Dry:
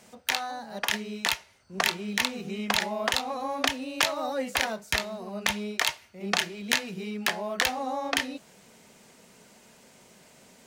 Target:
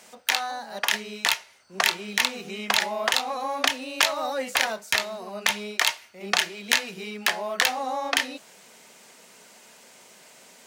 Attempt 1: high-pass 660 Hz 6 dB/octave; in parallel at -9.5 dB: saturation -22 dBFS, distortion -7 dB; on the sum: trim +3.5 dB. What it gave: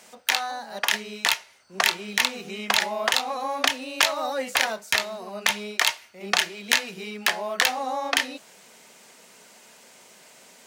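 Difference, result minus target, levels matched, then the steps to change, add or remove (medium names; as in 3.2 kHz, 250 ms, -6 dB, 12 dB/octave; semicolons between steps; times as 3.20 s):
saturation: distortion -5 dB
change: saturation -31.5 dBFS, distortion -2 dB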